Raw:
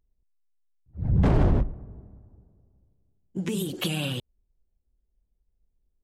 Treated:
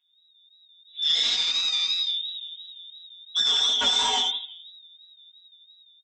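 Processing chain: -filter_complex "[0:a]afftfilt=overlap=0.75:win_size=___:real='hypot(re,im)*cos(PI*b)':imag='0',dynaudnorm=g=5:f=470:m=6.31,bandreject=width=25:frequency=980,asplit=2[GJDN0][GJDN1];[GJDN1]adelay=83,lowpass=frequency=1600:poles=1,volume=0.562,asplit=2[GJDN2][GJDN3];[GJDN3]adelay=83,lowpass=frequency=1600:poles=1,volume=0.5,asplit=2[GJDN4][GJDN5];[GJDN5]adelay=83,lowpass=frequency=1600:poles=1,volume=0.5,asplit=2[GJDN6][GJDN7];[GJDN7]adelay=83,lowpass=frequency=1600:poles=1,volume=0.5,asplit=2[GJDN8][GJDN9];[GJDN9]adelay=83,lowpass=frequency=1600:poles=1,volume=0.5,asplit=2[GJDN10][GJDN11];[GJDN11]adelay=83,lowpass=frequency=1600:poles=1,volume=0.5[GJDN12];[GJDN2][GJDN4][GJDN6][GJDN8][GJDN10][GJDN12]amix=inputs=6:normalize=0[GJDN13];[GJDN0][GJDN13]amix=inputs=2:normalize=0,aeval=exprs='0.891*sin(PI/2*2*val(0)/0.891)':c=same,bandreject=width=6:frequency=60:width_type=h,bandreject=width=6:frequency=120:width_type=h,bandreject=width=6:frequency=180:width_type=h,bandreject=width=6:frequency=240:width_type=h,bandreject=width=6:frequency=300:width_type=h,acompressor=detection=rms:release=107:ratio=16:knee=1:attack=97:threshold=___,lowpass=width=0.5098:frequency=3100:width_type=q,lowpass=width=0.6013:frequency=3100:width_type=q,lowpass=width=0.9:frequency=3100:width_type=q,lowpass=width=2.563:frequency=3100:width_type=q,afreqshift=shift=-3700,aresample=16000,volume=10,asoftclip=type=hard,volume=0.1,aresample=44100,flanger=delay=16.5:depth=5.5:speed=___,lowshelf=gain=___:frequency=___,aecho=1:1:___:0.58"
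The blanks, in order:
1024, 0.355, 2.9, -4.5, 120, 4.2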